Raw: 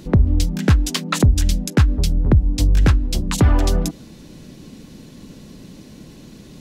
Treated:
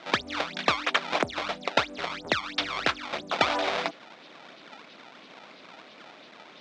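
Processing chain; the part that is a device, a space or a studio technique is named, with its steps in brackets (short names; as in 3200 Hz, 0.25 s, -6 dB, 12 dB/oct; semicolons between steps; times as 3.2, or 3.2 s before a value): circuit-bent sampling toy (decimation with a swept rate 23×, swing 160% 3 Hz; speaker cabinet 600–5300 Hz, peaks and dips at 660 Hz +6 dB, 1300 Hz +3 dB, 2300 Hz +5 dB, 3600 Hz +6 dB); gain -1 dB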